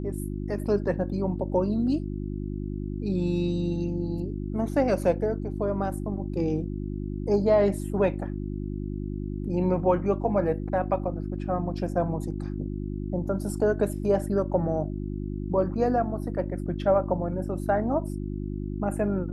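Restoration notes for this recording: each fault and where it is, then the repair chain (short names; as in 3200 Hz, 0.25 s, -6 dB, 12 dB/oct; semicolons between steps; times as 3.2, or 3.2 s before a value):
hum 50 Hz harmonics 7 -32 dBFS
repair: de-hum 50 Hz, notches 7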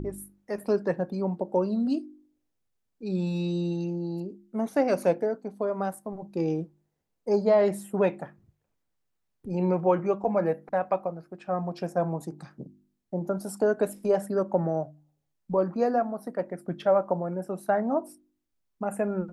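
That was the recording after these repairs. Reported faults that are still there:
none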